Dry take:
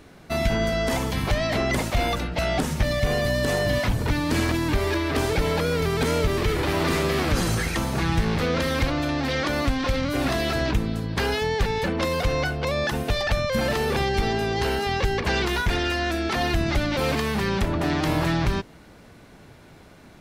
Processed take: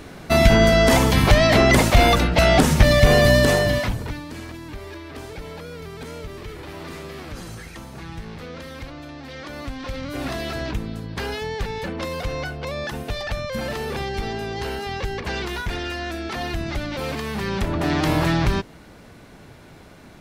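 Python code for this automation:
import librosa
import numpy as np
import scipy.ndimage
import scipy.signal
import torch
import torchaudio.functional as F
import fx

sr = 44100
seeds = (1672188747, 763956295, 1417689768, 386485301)

y = fx.gain(x, sr, db=fx.line((3.35, 9.0), (3.86, 0.0), (4.33, -12.5), (9.24, -12.5), (10.25, -4.0), (17.18, -4.0), (17.99, 3.0)))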